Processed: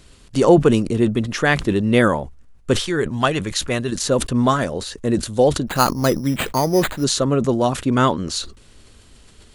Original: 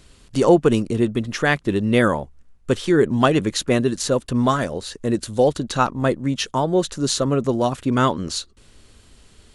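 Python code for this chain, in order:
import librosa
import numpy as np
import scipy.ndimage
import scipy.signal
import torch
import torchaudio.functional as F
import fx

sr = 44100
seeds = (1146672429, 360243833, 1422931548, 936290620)

y = fx.peak_eq(x, sr, hz=290.0, db=-8.0, octaves=2.4, at=(2.79, 3.92))
y = fx.resample_bad(y, sr, factor=8, down='none', up='hold', at=(5.67, 7.04))
y = fx.sustainer(y, sr, db_per_s=120.0)
y = y * 10.0 ** (1.5 / 20.0)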